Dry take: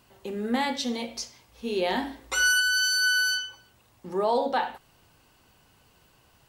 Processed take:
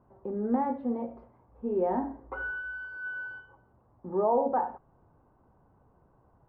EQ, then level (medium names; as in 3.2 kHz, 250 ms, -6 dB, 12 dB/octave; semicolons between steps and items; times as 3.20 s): low-pass 1.1 kHz 24 dB/octave; distance through air 150 m; 0.0 dB